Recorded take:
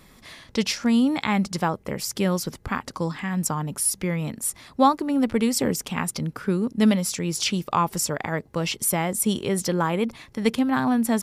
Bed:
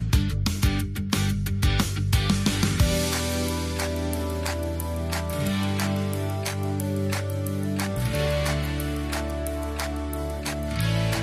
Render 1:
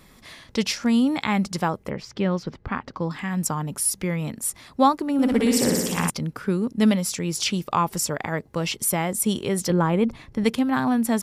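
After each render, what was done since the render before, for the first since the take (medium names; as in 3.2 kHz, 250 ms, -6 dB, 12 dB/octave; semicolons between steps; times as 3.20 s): 1.89–3.11 s: distance through air 210 m; 5.13–6.10 s: flutter echo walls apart 10.1 m, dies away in 1.2 s; 9.70–10.44 s: tilt EQ -2 dB/octave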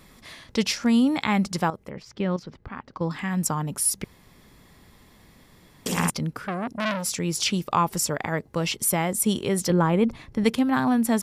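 1.70–3.01 s: level held to a coarse grid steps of 12 dB; 4.04–5.86 s: room tone; 6.38–7.16 s: transformer saturation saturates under 2.6 kHz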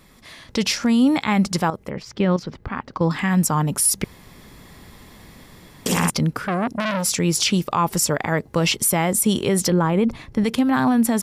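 level rider gain up to 9 dB; peak limiter -9.5 dBFS, peak gain reduction 8 dB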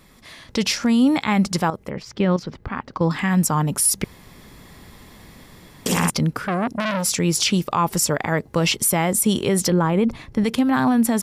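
no audible change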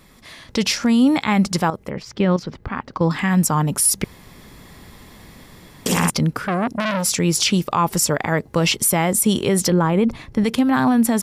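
trim +1.5 dB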